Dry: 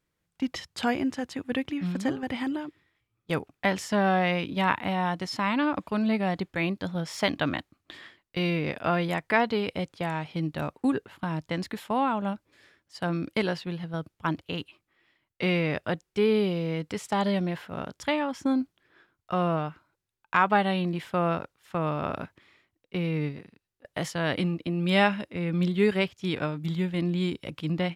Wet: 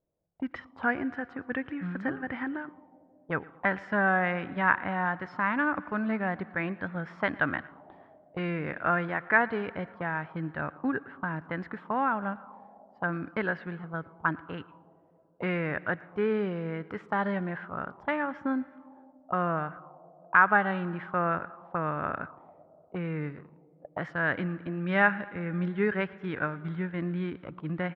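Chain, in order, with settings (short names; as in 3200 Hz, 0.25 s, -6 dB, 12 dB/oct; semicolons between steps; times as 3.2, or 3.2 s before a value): feedback echo 0.114 s, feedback 55%, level -23 dB; on a send at -20.5 dB: reverb RT60 3.2 s, pre-delay 67 ms; on the sum: envelope low-pass 630–1600 Hz up, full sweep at -28.5 dBFS; gain -5 dB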